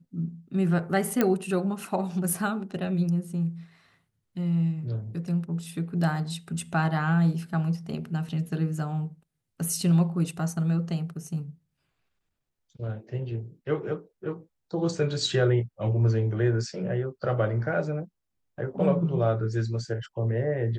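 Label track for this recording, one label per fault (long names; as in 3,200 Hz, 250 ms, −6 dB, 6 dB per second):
1.210000	1.210000	click −9 dBFS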